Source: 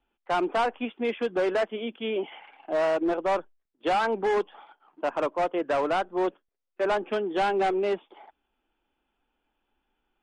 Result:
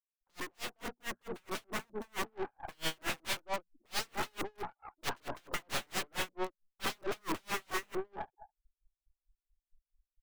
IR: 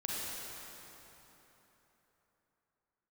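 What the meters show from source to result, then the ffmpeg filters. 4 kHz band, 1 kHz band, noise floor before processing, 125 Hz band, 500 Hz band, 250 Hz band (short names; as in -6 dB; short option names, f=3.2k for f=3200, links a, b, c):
-1.0 dB, -13.0 dB, -80 dBFS, -3.5 dB, -17.0 dB, -13.5 dB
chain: -filter_complex "[0:a]asuperstop=centerf=2700:order=20:qfactor=1,aecho=1:1:212:0.2,asubboost=boost=3:cutoff=55,acrossover=split=490[a][b];[a]crystalizer=i=2.5:c=0[c];[c][b]amix=inputs=2:normalize=0,acompressor=threshold=-27dB:ratio=12,aeval=exprs='(mod(37.6*val(0)+1,2)-1)/37.6':c=same,bandreject=f=60:t=h:w=6,bandreject=f=120:t=h:w=6,bandreject=f=180:t=h:w=6,bandreject=f=240:t=h:w=6,afftfilt=real='re*gte(hypot(re,im),0.00224)':imag='im*gte(hypot(re,im),0.00224)':win_size=1024:overlap=0.75,adynamicequalizer=threshold=0.00141:dfrequency=4700:dqfactor=2.4:tfrequency=4700:tqfactor=2.4:attack=5:release=100:ratio=0.375:range=3.5:mode=cutabove:tftype=bell,aeval=exprs='(tanh(224*val(0)+0.75)-tanh(0.75))/224':c=same,dynaudnorm=f=500:g=7:m=6dB,aeval=exprs='val(0)*pow(10,-39*(0.5-0.5*cos(2*PI*4.5*n/s))/20)':c=same,volume=10.5dB"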